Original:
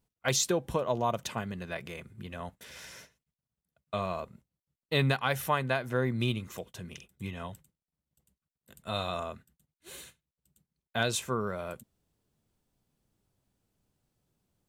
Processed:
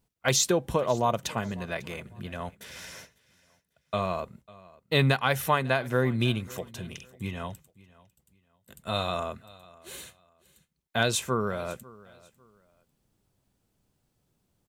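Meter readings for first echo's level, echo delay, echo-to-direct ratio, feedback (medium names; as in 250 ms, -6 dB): -22.0 dB, 548 ms, -21.5 dB, 28%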